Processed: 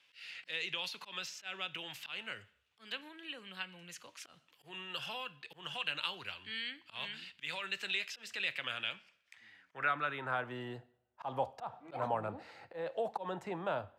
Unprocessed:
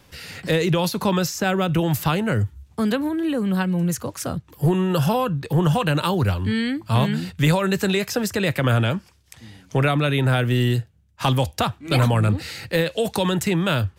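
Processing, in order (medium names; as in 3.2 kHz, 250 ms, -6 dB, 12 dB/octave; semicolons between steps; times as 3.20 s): two-slope reverb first 0.58 s, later 2.3 s, from -28 dB, DRR 15.5 dB; slow attack 134 ms; band-pass sweep 2.8 kHz -> 780 Hz, 8.95–10.82 s; trim -5 dB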